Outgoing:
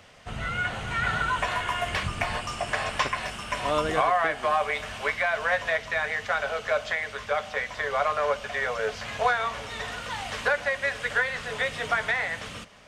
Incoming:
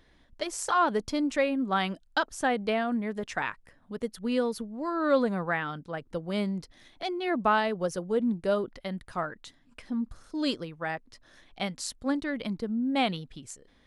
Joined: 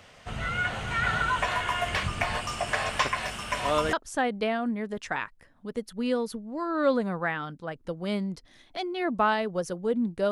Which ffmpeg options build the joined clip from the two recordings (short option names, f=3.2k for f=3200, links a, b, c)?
-filter_complex "[0:a]asettb=1/sr,asplit=3[a][b][c];[a]atrim=end=2.354[d];[b]atrim=start=2.35:end=3.93,asetpts=PTS-STARTPTS,afade=t=in:d=0.004:c=qsin,afade=t=out:st=1.576:d=0.004:c=qsin,highshelf=f=11k:g=6.5[e];[c]atrim=start=3.926[f];[d][e]acrossfade=d=0.004:c1=hsin:c2=qsin[g];[g][f]acrossfade=d=0.004:c1=qsin:c2=hsin,apad=whole_dur=10.31,atrim=end=10.31,atrim=end=3.932[h];[1:a]atrim=start=2.188:end=8.57[i];[h][i]acrossfade=d=0.004:c1=hsin:c2=hsin"